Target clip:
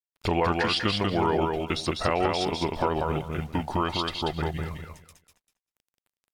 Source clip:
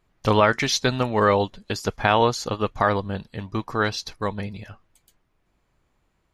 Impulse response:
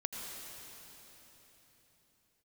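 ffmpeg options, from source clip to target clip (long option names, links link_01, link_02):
-filter_complex "[0:a]lowshelf=frequency=190:gain=-5,acrusher=bits=9:mix=0:aa=0.000001,asplit=2[link_01][link_02];[link_02]alimiter=limit=-19.5dB:level=0:latency=1:release=165,volume=-2.5dB[link_03];[link_01][link_03]amix=inputs=2:normalize=0,acompressor=threshold=-24dB:ratio=2,aecho=1:1:198|396|594:0.668|0.134|0.0267,asetrate=35002,aresample=44100,atempo=1.25992,volume=-1.5dB"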